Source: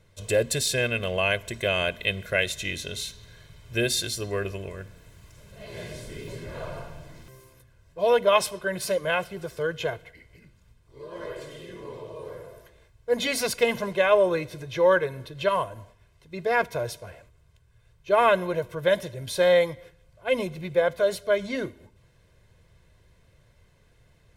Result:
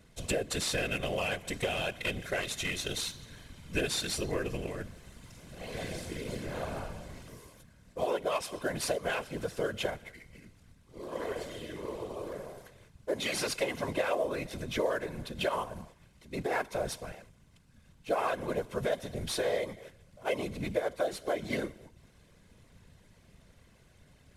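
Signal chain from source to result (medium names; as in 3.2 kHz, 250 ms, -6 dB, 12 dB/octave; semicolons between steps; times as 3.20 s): CVSD coder 64 kbps; compression 5:1, threshold -29 dBFS, peak gain reduction 13.5 dB; whisper effect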